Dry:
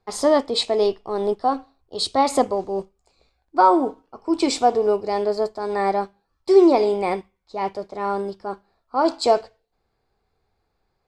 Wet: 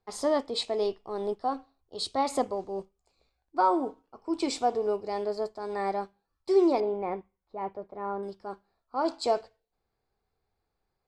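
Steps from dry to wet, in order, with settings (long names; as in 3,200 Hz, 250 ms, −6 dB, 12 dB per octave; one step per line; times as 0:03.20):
0:06.80–0:08.23: low-pass filter 1,600 Hz 12 dB per octave
level −9 dB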